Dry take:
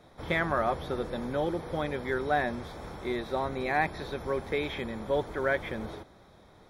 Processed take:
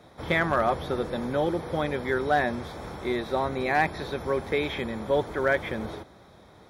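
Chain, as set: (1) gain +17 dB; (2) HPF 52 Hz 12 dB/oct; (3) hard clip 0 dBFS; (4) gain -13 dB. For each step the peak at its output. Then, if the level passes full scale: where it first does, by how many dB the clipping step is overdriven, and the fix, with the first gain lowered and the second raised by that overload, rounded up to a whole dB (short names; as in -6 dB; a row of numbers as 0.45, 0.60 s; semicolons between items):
+3.0, +3.5, 0.0, -13.0 dBFS; step 1, 3.5 dB; step 1 +13 dB, step 4 -9 dB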